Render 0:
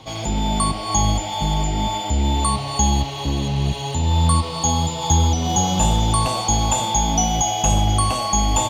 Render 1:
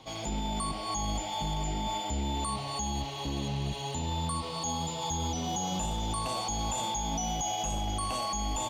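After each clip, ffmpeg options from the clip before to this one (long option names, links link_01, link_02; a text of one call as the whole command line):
ffmpeg -i in.wav -af "equalizer=frequency=90:width_type=o:width=0.83:gain=-8.5,alimiter=limit=-15.5dB:level=0:latency=1:release=13,volume=-8.5dB" out.wav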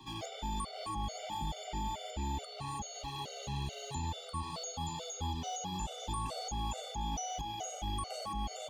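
ffmpeg -i in.wav -filter_complex "[0:a]acrossover=split=100|450|1000|6300[link_01][link_02][link_03][link_04][link_05];[link_01]acompressor=threshold=-38dB:ratio=4[link_06];[link_02]acompressor=threshold=-45dB:ratio=4[link_07];[link_03]acompressor=threshold=-42dB:ratio=4[link_08];[link_04]acompressor=threshold=-43dB:ratio=4[link_09];[link_05]acompressor=threshold=-52dB:ratio=4[link_10];[link_06][link_07][link_08][link_09][link_10]amix=inputs=5:normalize=0,afftfilt=real='re*gt(sin(2*PI*2.3*pts/sr)*(1-2*mod(floor(b*sr/1024/390),2)),0)':imag='im*gt(sin(2*PI*2.3*pts/sr)*(1-2*mod(floor(b*sr/1024/390),2)),0)':win_size=1024:overlap=0.75,volume=1dB" out.wav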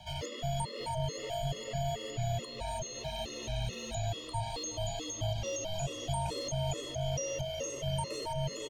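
ffmpeg -i in.wav -af "afreqshift=-190,aecho=1:1:371|742|1113|1484|1855:0.0891|0.0535|0.0321|0.0193|0.0116,volume=3dB" out.wav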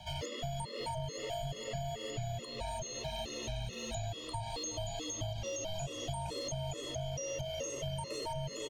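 ffmpeg -i in.wav -af "acompressor=threshold=-36dB:ratio=6,volume=1dB" out.wav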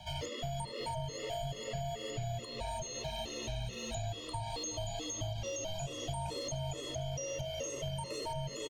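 ffmpeg -i in.wav -af "aecho=1:1:74:0.141" out.wav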